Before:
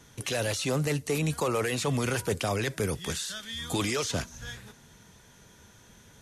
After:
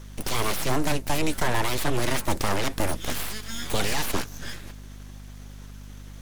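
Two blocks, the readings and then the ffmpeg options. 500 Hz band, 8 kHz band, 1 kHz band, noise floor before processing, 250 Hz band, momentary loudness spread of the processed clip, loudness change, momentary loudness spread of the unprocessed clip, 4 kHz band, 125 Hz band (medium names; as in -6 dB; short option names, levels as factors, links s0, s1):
0.0 dB, +2.0 dB, +6.5 dB, -56 dBFS, +1.5 dB, 18 LU, +2.0 dB, 7 LU, +3.0 dB, 0.0 dB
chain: -af "aeval=exprs='abs(val(0))':c=same,aeval=exprs='val(0)+0.00447*(sin(2*PI*50*n/s)+sin(2*PI*2*50*n/s)/2+sin(2*PI*3*50*n/s)/3+sin(2*PI*4*50*n/s)/4+sin(2*PI*5*50*n/s)/5)':c=same,equalizer=f=7900:w=1.5:g=-2,volume=2.11"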